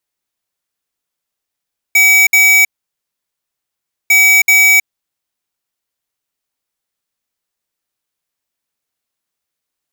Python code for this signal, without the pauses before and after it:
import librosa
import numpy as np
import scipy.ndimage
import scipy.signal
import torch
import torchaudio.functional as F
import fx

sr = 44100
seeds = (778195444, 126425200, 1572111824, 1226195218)

y = fx.beep_pattern(sr, wave='square', hz=2280.0, on_s=0.32, off_s=0.06, beeps=2, pause_s=1.45, groups=2, level_db=-8.0)